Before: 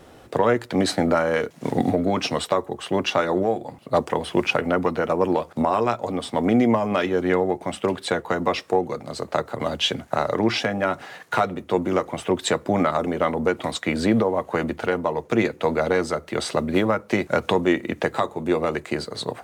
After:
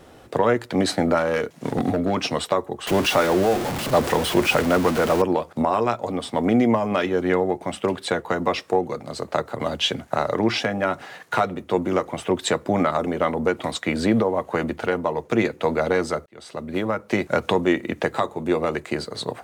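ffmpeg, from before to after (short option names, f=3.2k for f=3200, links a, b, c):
-filter_complex "[0:a]asettb=1/sr,asplit=3[a][b][c];[a]atrim=end=1.184[d];[b]atrim=start=1.18:end=2.15,asetpts=PTS-STARTPTS,afade=t=in:d=0.004:c=qsin,afade=t=out:st=0.966:d=0.004:c=qsin,asoftclip=type=hard:threshold=-15.5dB[e];[c]atrim=start=2.146[f];[d][e]acrossfade=d=0.004:c1=hsin:c2=qsin[g];[g][f]acrossfade=d=0.004:c1=qsin:c2=hsin,asettb=1/sr,asplit=3[h][i][j];[h]atrim=end=2.874[k];[i]atrim=start=2.87:end=5.22,asetpts=PTS-STARTPTS,afade=t=in:d=0.004:c=qsin,afade=t=out:st=2.346:d=0.004:c=qsin,aeval=exprs='val(0)+0.5*0.0794*sgn(val(0))':c=same[l];[j]atrim=start=5.216[m];[k][l]acrossfade=d=0.004:c1=hsin:c2=qsin[n];[n][m]acrossfade=d=0.004:c1=qsin:c2=hsin,asplit=2[o][p];[o]atrim=end=16.26,asetpts=PTS-STARTPTS,afade=t=out:st=16.256:d=0.004:c=hsin[q];[p]atrim=start=16.26,asetpts=PTS-STARTPTS,afade=t=in:d=0.92[r];[q][r]concat=n=2:v=0:a=1"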